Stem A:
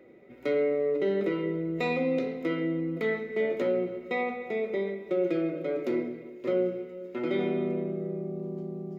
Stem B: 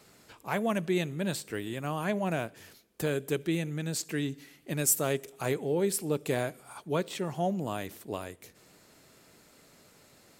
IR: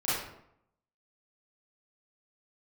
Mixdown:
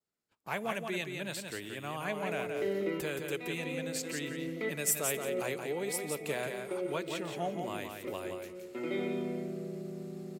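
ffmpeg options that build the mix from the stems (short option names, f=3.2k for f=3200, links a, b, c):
-filter_complex "[0:a]adelay=1600,volume=-6.5dB,asplit=2[a][b];[b]volume=-9.5dB[c];[1:a]bandreject=f=60:t=h:w=6,bandreject=f=120:t=h:w=6,acrossover=split=470[d][e];[d]acompressor=threshold=-42dB:ratio=2[f];[f][e]amix=inputs=2:normalize=0,volume=-4.5dB,asplit=3[g][h][i];[h]volume=-5.5dB[j];[i]apad=whole_len=466889[k];[a][k]sidechaincompress=threshold=-50dB:ratio=8:attack=16:release=168[l];[c][j]amix=inputs=2:normalize=0,aecho=0:1:173|346|519:1|0.18|0.0324[m];[l][g][m]amix=inputs=3:normalize=0,adynamicequalizer=threshold=0.00141:dfrequency=2500:dqfactor=1.8:tfrequency=2500:tqfactor=1.8:attack=5:release=100:ratio=0.375:range=2.5:mode=boostabove:tftype=bell,agate=range=-29dB:threshold=-52dB:ratio=16:detection=peak"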